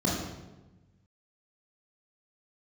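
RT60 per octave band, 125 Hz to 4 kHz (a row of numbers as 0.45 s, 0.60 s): 1.8 s, 1.5 s, 1.2 s, 1.0 s, 0.90 s, 0.75 s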